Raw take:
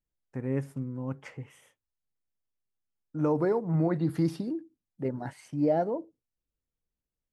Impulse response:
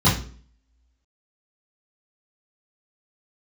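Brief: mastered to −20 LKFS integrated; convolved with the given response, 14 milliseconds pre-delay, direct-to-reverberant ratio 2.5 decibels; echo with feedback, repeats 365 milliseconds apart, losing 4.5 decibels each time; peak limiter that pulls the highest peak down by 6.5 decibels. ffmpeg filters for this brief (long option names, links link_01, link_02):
-filter_complex "[0:a]alimiter=limit=-22.5dB:level=0:latency=1,aecho=1:1:365|730|1095|1460|1825|2190|2555|2920|3285:0.596|0.357|0.214|0.129|0.0772|0.0463|0.0278|0.0167|0.01,asplit=2[link_01][link_02];[1:a]atrim=start_sample=2205,adelay=14[link_03];[link_02][link_03]afir=irnorm=-1:irlink=0,volume=-21dB[link_04];[link_01][link_04]amix=inputs=2:normalize=0,volume=5dB"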